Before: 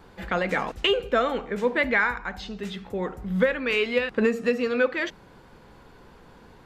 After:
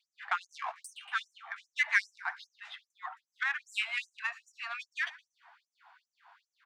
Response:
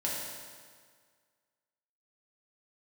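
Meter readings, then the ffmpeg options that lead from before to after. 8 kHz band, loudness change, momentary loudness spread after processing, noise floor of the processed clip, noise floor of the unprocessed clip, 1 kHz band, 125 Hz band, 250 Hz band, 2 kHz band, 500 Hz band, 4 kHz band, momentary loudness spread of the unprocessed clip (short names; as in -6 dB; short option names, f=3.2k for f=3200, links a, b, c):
n/a, -9.5 dB, 17 LU, under -85 dBFS, -52 dBFS, -9.0 dB, under -40 dB, under -40 dB, -6.0 dB, -34.0 dB, -10.5 dB, 11 LU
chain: -af "adynamicsmooth=sensitivity=1:basefreq=2.8k,aecho=1:1:116|232|348|464:0.0891|0.0472|0.025|0.0133,afftfilt=real='re*gte(b*sr/1024,630*pow(5900/630,0.5+0.5*sin(2*PI*2.5*pts/sr)))':imag='im*gte(b*sr/1024,630*pow(5900/630,0.5+0.5*sin(2*PI*2.5*pts/sr)))':win_size=1024:overlap=0.75,volume=-1dB"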